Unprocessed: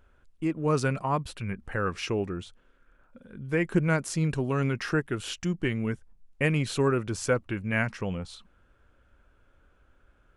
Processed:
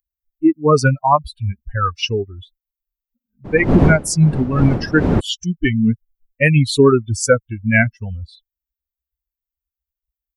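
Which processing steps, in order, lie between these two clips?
per-bin expansion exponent 3; 3.44–5.19 wind noise 300 Hz -34 dBFS; maximiser +20 dB; gain -1 dB

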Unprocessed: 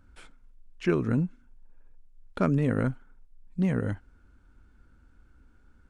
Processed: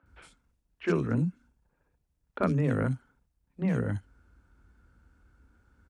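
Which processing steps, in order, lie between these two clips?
HPF 45 Hz 24 dB/oct; three bands offset in time mids, lows, highs 30/60 ms, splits 270/3100 Hz

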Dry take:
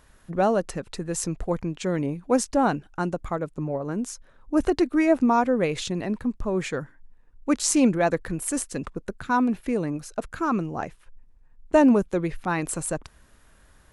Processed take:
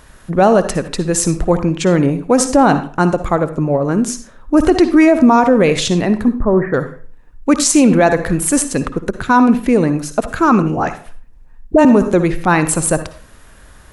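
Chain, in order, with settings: 6.28–6.74 Chebyshev low-pass 1900 Hz, order 6; 10.62–11.85 dispersion highs, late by 46 ms, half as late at 810 Hz; on a send at -11 dB: reverb RT60 0.45 s, pre-delay 52 ms; on the sum: maximiser +14 dB; gain -1 dB

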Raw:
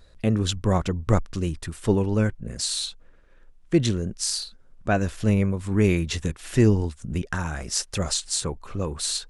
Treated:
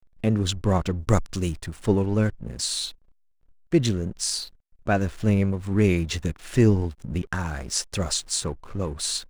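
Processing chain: 0.98–1.57 high shelf 3900 Hz +10.5 dB; backlash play -39 dBFS

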